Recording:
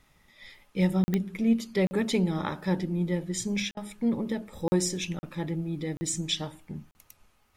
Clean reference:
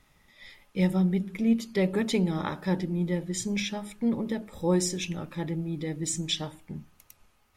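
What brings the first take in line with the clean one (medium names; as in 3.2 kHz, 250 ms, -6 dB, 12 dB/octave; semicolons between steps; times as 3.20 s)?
de-click; interpolate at 1.04/1.87/3.71/4.68/5.19/5.97/6.91 s, 40 ms; interpolate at 3.72 s, 48 ms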